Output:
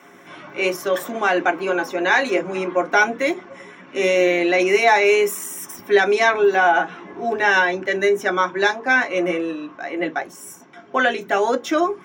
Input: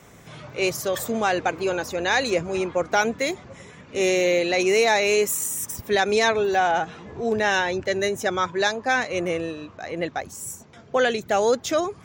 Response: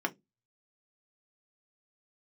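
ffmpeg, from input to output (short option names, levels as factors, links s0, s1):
-filter_complex "[0:a]equalizer=f=180:w=0.86:g=-7.5[s0];[1:a]atrim=start_sample=2205[s1];[s0][s1]afir=irnorm=-1:irlink=0,volume=0.891"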